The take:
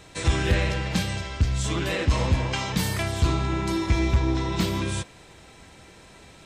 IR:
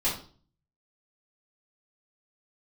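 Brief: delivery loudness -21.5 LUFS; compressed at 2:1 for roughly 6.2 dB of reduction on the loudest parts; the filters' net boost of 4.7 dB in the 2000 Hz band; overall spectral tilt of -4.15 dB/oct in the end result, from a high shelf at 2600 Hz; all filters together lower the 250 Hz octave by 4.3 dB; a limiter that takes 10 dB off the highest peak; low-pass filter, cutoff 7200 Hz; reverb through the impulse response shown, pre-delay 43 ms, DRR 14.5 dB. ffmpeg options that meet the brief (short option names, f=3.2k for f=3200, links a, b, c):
-filter_complex "[0:a]lowpass=7.2k,equalizer=f=250:t=o:g=-7,equalizer=f=2k:t=o:g=4,highshelf=f=2.6k:g=4,acompressor=threshold=-27dB:ratio=2,alimiter=limit=-23dB:level=0:latency=1,asplit=2[a][b];[1:a]atrim=start_sample=2205,adelay=43[c];[b][c]afir=irnorm=-1:irlink=0,volume=-23.5dB[d];[a][d]amix=inputs=2:normalize=0,volume=10.5dB"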